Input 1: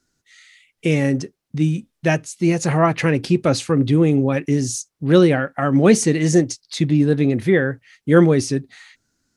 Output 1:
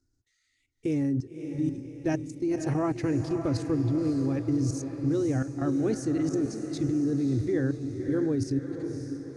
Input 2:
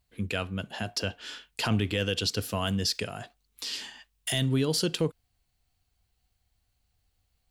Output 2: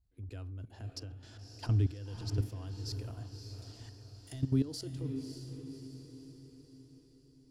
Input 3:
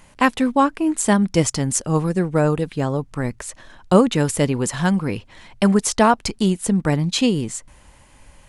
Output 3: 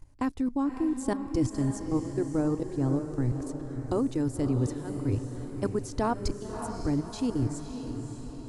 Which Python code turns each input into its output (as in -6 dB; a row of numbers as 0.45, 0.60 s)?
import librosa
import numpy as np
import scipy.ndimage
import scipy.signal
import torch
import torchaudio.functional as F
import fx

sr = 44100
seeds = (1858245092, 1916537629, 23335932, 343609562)

y = fx.curve_eq(x, sr, hz=(120.0, 180.0, 280.0, 530.0, 770.0, 1500.0, 3100.0, 4900.0, 13000.0), db=(0, -27, -4, -17, -16, -20, -25, -15, -20))
y = fx.level_steps(y, sr, step_db=16)
y = fx.echo_diffused(y, sr, ms=572, feedback_pct=52, wet_db=-7.5)
y = F.gain(torch.from_numpy(y), 6.0).numpy()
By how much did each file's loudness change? -10.5, -8.0, -11.0 LU